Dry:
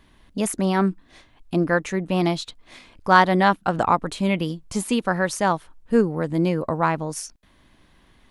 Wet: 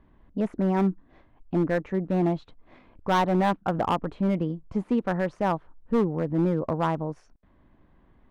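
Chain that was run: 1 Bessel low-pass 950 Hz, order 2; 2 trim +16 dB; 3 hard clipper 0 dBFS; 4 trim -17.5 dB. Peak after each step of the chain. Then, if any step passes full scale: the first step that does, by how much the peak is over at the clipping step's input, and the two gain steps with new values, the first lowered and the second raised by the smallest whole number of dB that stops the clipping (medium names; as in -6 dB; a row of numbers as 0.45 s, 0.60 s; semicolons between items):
-6.5 dBFS, +9.5 dBFS, 0.0 dBFS, -17.5 dBFS; step 2, 9.5 dB; step 2 +6 dB, step 4 -7.5 dB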